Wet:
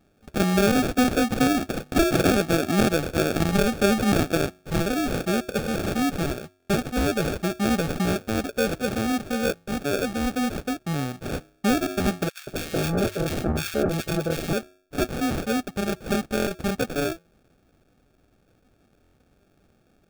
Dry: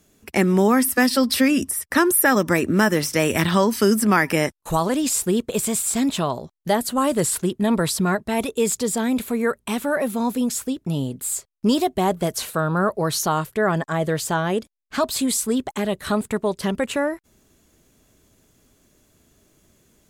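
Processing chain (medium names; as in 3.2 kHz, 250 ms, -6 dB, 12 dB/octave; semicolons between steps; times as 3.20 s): de-hum 366 Hz, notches 31; sample-rate reducer 1 kHz, jitter 0%; 12.29–14.53 s: bands offset in time highs, lows 180 ms, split 1.5 kHz; buffer glitch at 6.58/16.35/19.02 s, samples 1024, times 4; trim -3 dB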